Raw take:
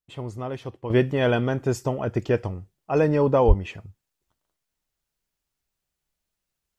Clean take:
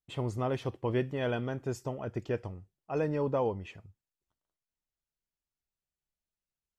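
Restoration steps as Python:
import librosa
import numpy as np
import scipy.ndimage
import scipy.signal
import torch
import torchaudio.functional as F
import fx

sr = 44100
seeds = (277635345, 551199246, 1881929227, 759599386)

y = fx.highpass(x, sr, hz=140.0, slope=24, at=(3.47, 3.59), fade=0.02)
y = fx.gain(y, sr, db=fx.steps((0.0, 0.0), (0.9, -10.5)))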